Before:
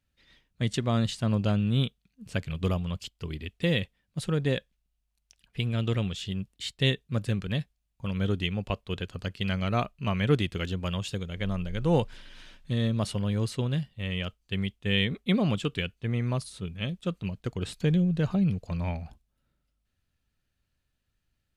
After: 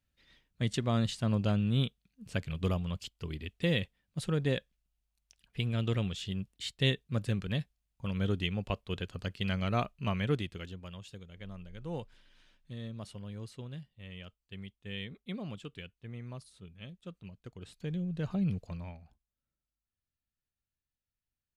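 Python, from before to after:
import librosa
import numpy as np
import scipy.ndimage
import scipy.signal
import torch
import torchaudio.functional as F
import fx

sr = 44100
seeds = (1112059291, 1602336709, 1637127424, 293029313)

y = fx.gain(x, sr, db=fx.line((10.07, -3.5), (10.89, -15.0), (17.68, -15.0), (18.58, -4.0), (18.98, -16.5)))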